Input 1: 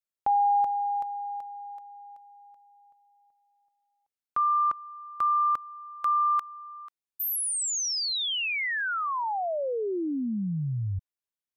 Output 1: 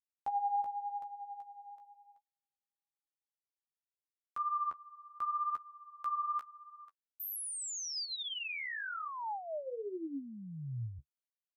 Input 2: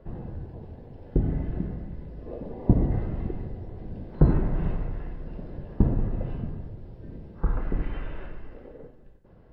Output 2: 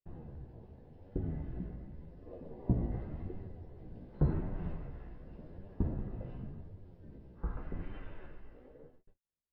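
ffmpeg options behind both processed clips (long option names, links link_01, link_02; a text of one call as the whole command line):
ffmpeg -i in.wav -af "agate=range=-39dB:threshold=-45dB:ratio=16:release=310:detection=rms,flanger=delay=9.9:depth=7.6:regen=23:speed=0.88:shape=triangular,volume=-7.5dB" out.wav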